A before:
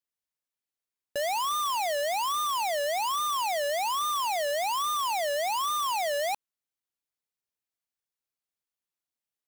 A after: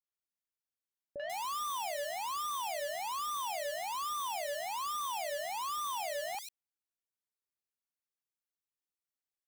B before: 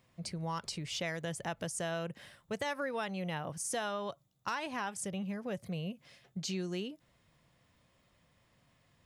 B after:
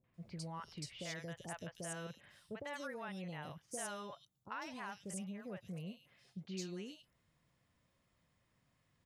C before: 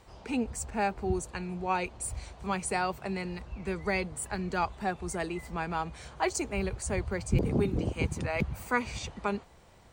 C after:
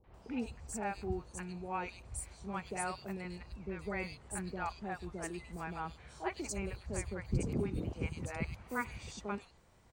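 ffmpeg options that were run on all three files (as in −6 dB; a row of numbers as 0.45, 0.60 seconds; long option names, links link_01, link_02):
-filter_complex "[0:a]acrossover=split=660|3200[link_01][link_02][link_03];[link_02]adelay=40[link_04];[link_03]adelay=140[link_05];[link_01][link_04][link_05]amix=inputs=3:normalize=0,volume=-7dB"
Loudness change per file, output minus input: −8.5, −8.0, −8.0 LU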